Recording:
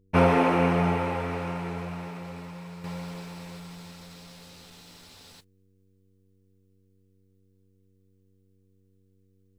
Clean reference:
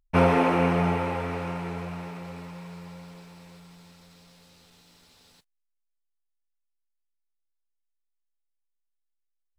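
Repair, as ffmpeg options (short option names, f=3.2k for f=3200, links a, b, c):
-af "bandreject=f=95.5:t=h:w=4,bandreject=f=191:t=h:w=4,bandreject=f=286.5:t=h:w=4,bandreject=f=382:t=h:w=4,bandreject=f=477.5:t=h:w=4,asetnsamples=n=441:p=0,asendcmd='2.84 volume volume -7.5dB',volume=0dB"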